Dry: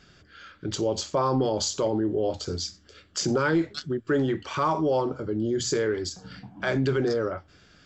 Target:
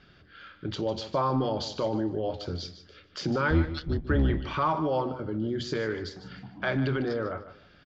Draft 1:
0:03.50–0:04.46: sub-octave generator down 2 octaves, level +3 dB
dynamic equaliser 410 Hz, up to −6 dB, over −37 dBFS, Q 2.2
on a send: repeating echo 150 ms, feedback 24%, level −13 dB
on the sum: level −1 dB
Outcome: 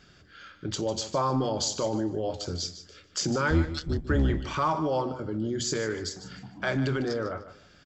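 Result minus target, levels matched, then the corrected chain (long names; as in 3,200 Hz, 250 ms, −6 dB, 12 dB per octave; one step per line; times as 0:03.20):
4,000 Hz band +3.5 dB
0:03.50–0:04.46: sub-octave generator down 2 octaves, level +3 dB
dynamic equaliser 410 Hz, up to −6 dB, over −37 dBFS, Q 2.2
low-pass filter 4,200 Hz 24 dB per octave
on a send: repeating echo 150 ms, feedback 24%, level −13 dB
on the sum: level −1 dB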